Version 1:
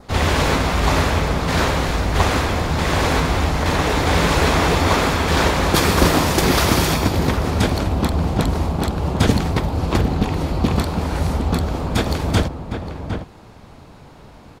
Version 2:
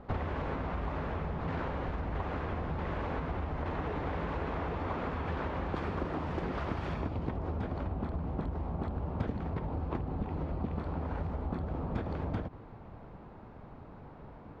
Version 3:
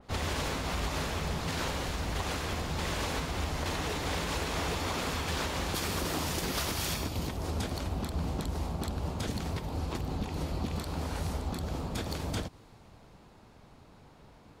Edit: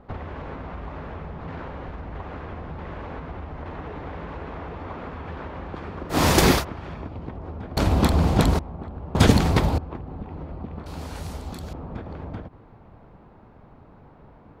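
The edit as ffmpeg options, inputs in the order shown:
-filter_complex "[0:a]asplit=3[s0][s1][s2];[1:a]asplit=5[s3][s4][s5][s6][s7];[s3]atrim=end=6.25[s8];[s0]atrim=start=6.09:end=6.65[s9];[s4]atrim=start=6.49:end=7.772[s10];[s1]atrim=start=7.768:end=8.592[s11];[s5]atrim=start=8.588:end=9.152[s12];[s2]atrim=start=9.148:end=9.782[s13];[s6]atrim=start=9.778:end=10.862[s14];[2:a]atrim=start=10.858:end=11.732[s15];[s7]atrim=start=11.728[s16];[s8][s9]acrossfade=d=0.16:c1=tri:c2=tri[s17];[s17][s10]acrossfade=d=0.16:c1=tri:c2=tri[s18];[s18][s11]acrossfade=d=0.004:c1=hsin:c2=hsin[s19];[s19][s12]acrossfade=d=0.004:c1=hsin:c2=hsin[s20];[s20][s13]acrossfade=d=0.004:c1=hsin:c2=hsin[s21];[s21][s14]acrossfade=d=0.004:c1=hsin:c2=hsin[s22];[s22][s15]acrossfade=d=0.004:c1=hsin:c2=hsin[s23];[s23][s16]acrossfade=d=0.004:c1=hsin:c2=hsin"

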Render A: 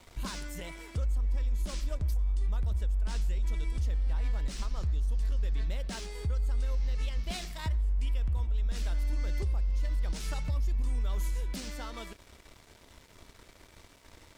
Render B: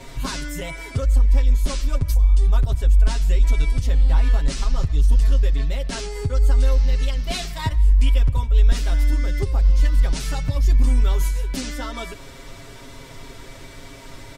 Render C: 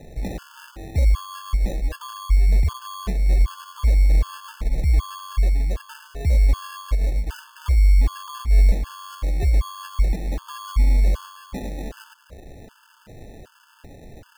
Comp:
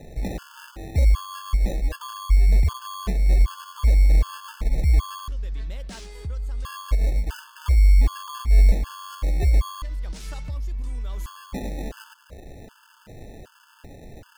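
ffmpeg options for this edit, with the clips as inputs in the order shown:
-filter_complex "[0:a]asplit=2[s0][s1];[2:a]asplit=3[s2][s3][s4];[s2]atrim=end=5.282[s5];[s0]atrim=start=5.278:end=6.652[s6];[s3]atrim=start=6.648:end=9.822[s7];[s1]atrim=start=9.818:end=11.262[s8];[s4]atrim=start=11.258[s9];[s5][s6]acrossfade=d=0.004:c1=hsin:c2=hsin[s10];[s10][s7]acrossfade=d=0.004:c1=hsin:c2=hsin[s11];[s11][s8]acrossfade=d=0.004:c1=hsin:c2=hsin[s12];[s12][s9]acrossfade=d=0.004:c1=hsin:c2=hsin"

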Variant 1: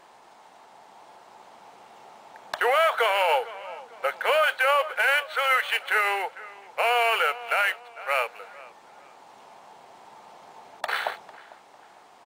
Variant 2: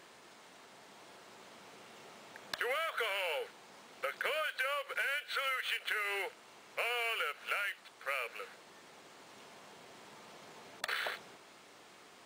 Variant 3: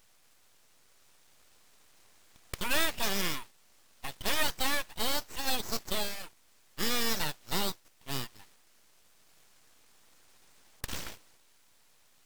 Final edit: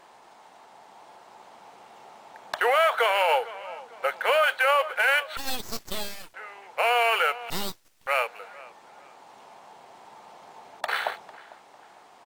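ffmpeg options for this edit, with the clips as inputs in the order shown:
-filter_complex "[2:a]asplit=2[s0][s1];[0:a]asplit=3[s2][s3][s4];[s2]atrim=end=5.372[s5];[s0]atrim=start=5.368:end=6.342[s6];[s3]atrim=start=6.338:end=7.502[s7];[s1]atrim=start=7.498:end=8.072[s8];[s4]atrim=start=8.068[s9];[s5][s6]acrossfade=d=0.004:c1=hsin:c2=hsin[s10];[s10][s7]acrossfade=d=0.004:c1=hsin:c2=hsin[s11];[s11][s8]acrossfade=d=0.004:c1=hsin:c2=hsin[s12];[s12][s9]acrossfade=d=0.004:c1=hsin:c2=hsin"

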